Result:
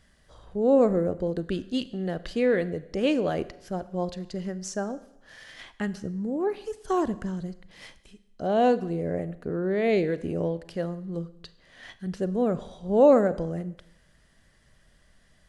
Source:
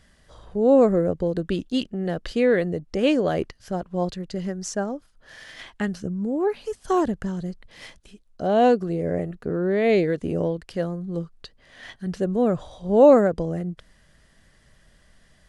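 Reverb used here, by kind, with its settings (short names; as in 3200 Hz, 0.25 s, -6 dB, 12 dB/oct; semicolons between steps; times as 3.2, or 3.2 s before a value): Schroeder reverb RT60 0.83 s, combs from 32 ms, DRR 15 dB; gain -4 dB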